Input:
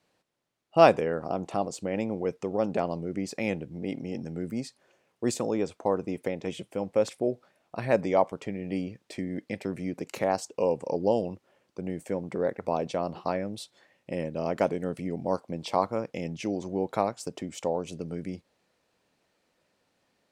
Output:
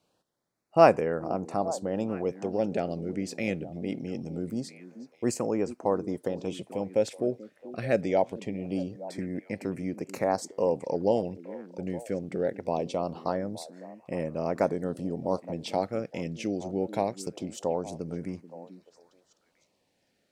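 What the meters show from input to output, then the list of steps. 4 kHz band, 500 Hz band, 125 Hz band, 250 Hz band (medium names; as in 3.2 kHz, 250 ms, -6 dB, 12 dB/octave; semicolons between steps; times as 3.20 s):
-2.0 dB, 0.0 dB, 0.0 dB, 0.0 dB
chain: LFO notch sine 0.23 Hz 900–3600 Hz; repeats whose band climbs or falls 434 ms, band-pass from 260 Hz, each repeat 1.4 oct, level -11.5 dB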